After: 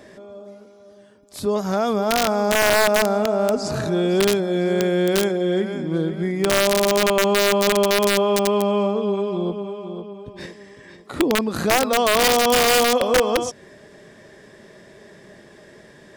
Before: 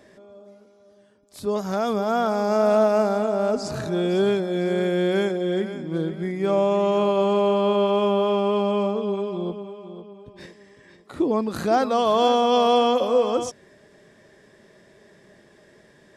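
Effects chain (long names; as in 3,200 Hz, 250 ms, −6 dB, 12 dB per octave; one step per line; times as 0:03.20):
in parallel at +2 dB: downward compressor 10 to 1, threshold −30 dBFS, peak gain reduction 16 dB
on the sum: wrap-around overflow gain 10 dB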